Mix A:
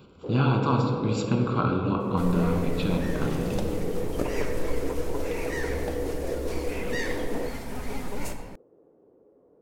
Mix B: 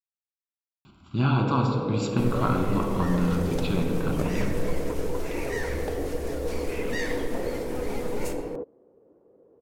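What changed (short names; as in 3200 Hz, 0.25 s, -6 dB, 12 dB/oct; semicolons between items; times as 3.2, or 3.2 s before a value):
speech: entry +0.85 s; first sound: entry +1.15 s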